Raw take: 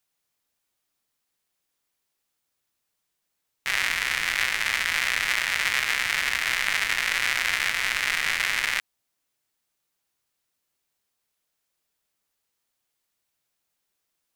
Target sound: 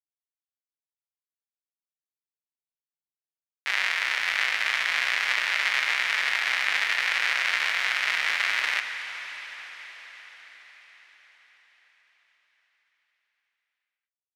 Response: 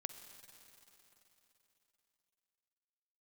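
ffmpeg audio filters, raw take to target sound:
-filter_complex "[0:a]acrossover=split=330 5500:gain=0.126 1 0.178[s0][s1][s2];[s0][s1][s2]amix=inputs=3:normalize=0,aeval=exprs='val(0)*gte(abs(val(0)),0.0133)':c=same[s3];[1:a]atrim=start_sample=2205,asetrate=26019,aresample=44100[s4];[s3][s4]afir=irnorm=-1:irlink=0"

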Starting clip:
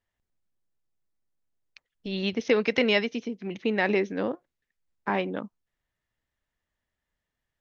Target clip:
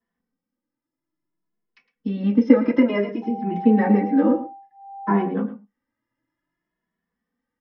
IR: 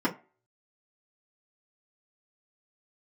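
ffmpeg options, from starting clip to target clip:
-filter_complex "[0:a]aecho=1:1:110:0.188,asettb=1/sr,asplit=3[s0][s1][s2];[s0]atrim=end=3.224[s3];[s1]atrim=start=3.22:end=5.28,asetpts=PTS-STARTPTS,afade=t=in:d=0.004:c=qsin,afade=t=out:st=2.056:d=0.004:c=qsin,aeval=exprs='val(0)+0.0282*sin(2*PI*790*n/s)':c=same[s4];[s2]atrim=start=5.276[s5];[s3][s4]acrossfade=d=0.004:c1=hsin:c2=qsin[s6];[s6][s5]acrossfade=d=0.004:c1=qsin:c2=hsin,acrossover=split=280|1700[s7][s8][s9];[s9]acompressor=threshold=0.00708:ratio=6[s10];[s7][s8][s10]amix=inputs=3:normalize=0[s11];[1:a]atrim=start_sample=2205,atrim=end_sample=6174[s12];[s11][s12]afir=irnorm=-1:irlink=0,asplit=2[s13][s14];[s14]adelay=2.3,afreqshift=0.57[s15];[s13][s15]amix=inputs=2:normalize=1,volume=0.562"

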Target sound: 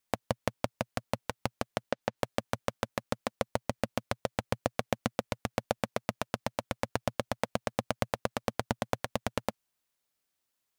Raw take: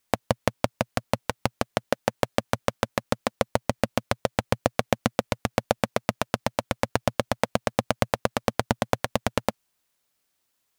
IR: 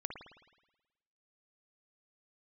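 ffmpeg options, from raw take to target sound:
-filter_complex "[0:a]asettb=1/sr,asplit=3[s0][s1][s2];[s0]atrim=end=1.834[s3];[s1]atrim=start=1.83:end=2.23,asetpts=PTS-STARTPTS,afade=t=in:d=0.004:c=qsin,afade=t=out:st=0.396:d=0.004:c=qsin,acrossover=split=6700[s4][s5];[s5]acompressor=threshold=0.00178:ratio=4:attack=1:release=60[s6];[s4][s6]amix=inputs=2:normalize=0[s7];[s2]atrim=start=2.226[s8];[s3][s7]acrossfade=d=0.004:c1=hsin:c2=qsin[s9];[s9][s8]acrossfade=d=0.004:c1=qsin:c2=hsin,volume=0.422"

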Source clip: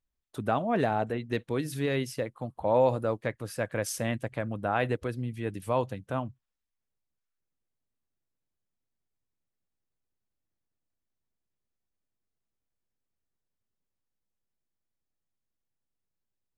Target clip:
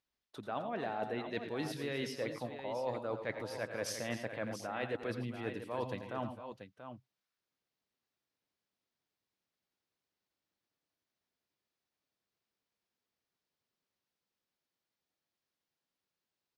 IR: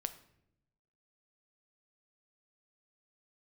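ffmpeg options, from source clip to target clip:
-af "highpass=f=330:p=1,highshelf=f=6300:t=q:w=1.5:g=-7.5,areverse,acompressor=threshold=0.0112:ratio=10,areverse,aecho=1:1:87|107|259|685:0.282|0.237|0.178|0.335,volume=1.58"

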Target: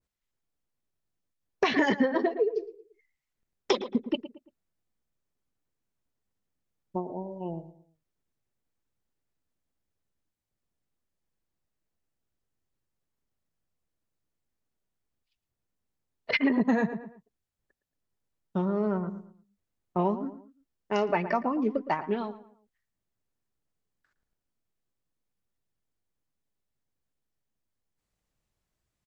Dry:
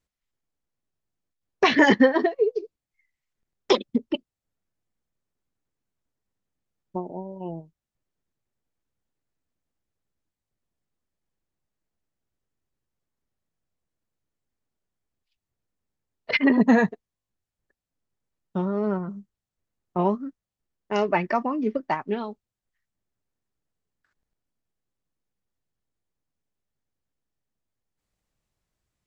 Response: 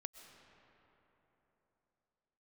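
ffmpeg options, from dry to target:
-filter_complex "[0:a]asplit=2[s0][s1];[s1]adelay=113,lowpass=f=2000:p=1,volume=0.2,asplit=2[s2][s3];[s3]adelay=113,lowpass=f=2000:p=1,volume=0.36,asplit=2[s4][s5];[s5]adelay=113,lowpass=f=2000:p=1,volume=0.36[s6];[s0][s2][s4][s6]amix=inputs=4:normalize=0,acompressor=threshold=0.112:ratio=6,adynamicequalizer=threshold=0.0141:dfrequency=1600:dqfactor=0.7:tfrequency=1600:tqfactor=0.7:attack=5:release=100:ratio=0.375:range=1.5:mode=cutabove:tftype=highshelf,volume=0.841"

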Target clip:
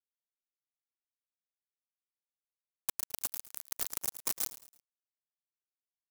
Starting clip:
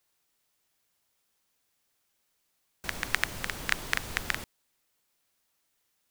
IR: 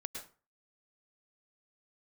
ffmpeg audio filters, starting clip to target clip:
-filter_complex "[1:a]atrim=start_sample=2205[s0];[0:a][s0]afir=irnorm=-1:irlink=0,asoftclip=type=hard:threshold=0.0891,asettb=1/sr,asplit=3[s1][s2][s3];[s1]atrim=end=2.944[s4];[s2]atrim=start=2.94:end=4.16,asetpts=PTS-STARTPTS,afade=t=in:d=0.004:c=qsin,afade=t=out:st=1.216:d=0.004:c=qsin,acrossover=split=150|3000[s5][s6][s7];[s6]acompressor=threshold=0.0112:ratio=4[s8];[s5][s8][s7]amix=inputs=3:normalize=0[s9];[s3]atrim=start=4.156[s10];[s4][s9]acrossfade=d=0.004:c1=hsin:c2=qsin[s11];[s11][s10]acrossfade=d=0.004:c1=qsin:c2=hsin,acrusher=samples=41:mix=1:aa=0.000001,afftfilt=real='hypot(re,im)*cos(2*PI*random(0))':imag='hypot(re,im)*sin(2*PI*random(1))':win_size=512:overlap=0.75,acrusher=bits=5:mix=0:aa=0.000001,aecho=1:1:109|218|327:0.158|0.0602|0.0229,aexciter=amount=7.2:drive=6.1:freq=5000,aeval=exprs='val(0)*sgn(sin(2*PI*730*n/s))':c=same,volume=0.596"

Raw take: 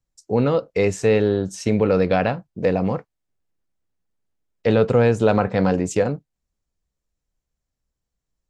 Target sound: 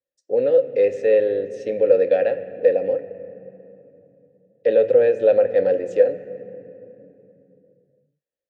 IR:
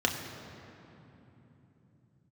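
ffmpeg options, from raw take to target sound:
-filter_complex "[0:a]asplit=3[s0][s1][s2];[s0]bandpass=f=530:t=q:w=8,volume=1[s3];[s1]bandpass=f=1840:t=q:w=8,volume=0.501[s4];[s2]bandpass=f=2480:t=q:w=8,volume=0.355[s5];[s3][s4][s5]amix=inputs=3:normalize=0,acontrast=39,asplit=2[s6][s7];[1:a]atrim=start_sample=2205,asetrate=48510,aresample=44100[s8];[s7][s8]afir=irnorm=-1:irlink=0,volume=0.158[s9];[s6][s9]amix=inputs=2:normalize=0"

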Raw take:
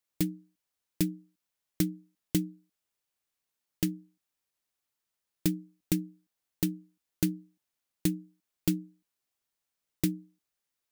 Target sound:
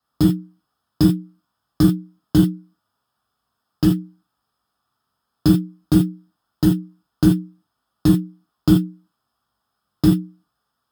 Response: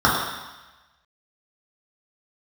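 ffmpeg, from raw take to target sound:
-filter_complex "[1:a]atrim=start_sample=2205,atrim=end_sample=3969,asetrate=41013,aresample=44100[s0];[0:a][s0]afir=irnorm=-1:irlink=0,volume=0.501"

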